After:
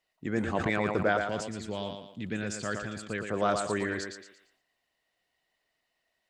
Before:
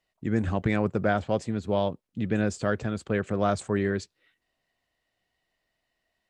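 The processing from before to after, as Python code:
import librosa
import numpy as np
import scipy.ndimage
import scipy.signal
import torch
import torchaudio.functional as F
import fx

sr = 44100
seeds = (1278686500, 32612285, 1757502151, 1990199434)

y = fx.peak_eq(x, sr, hz=680.0, db=-9.5, octaves=2.2, at=(1.17, 3.26))
y = fx.hpss(y, sr, part='harmonic', gain_db=-4)
y = fx.low_shelf(y, sr, hz=240.0, db=-9.5)
y = fx.echo_thinned(y, sr, ms=115, feedback_pct=31, hz=180.0, wet_db=-6)
y = fx.sustainer(y, sr, db_per_s=73.0)
y = y * librosa.db_to_amplitude(1.5)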